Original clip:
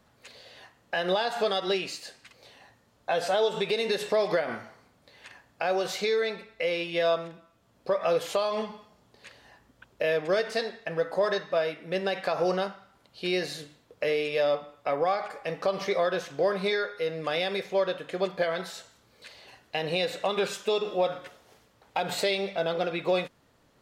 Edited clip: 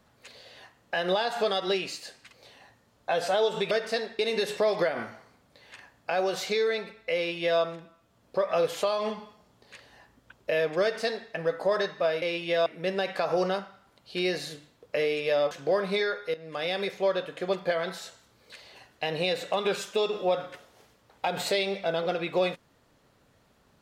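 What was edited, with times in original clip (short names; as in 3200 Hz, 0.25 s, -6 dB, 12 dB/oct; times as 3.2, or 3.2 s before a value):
6.68–7.12 copy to 11.74
10.34–10.82 copy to 3.71
14.59–16.23 cut
17.06–17.49 fade in, from -15 dB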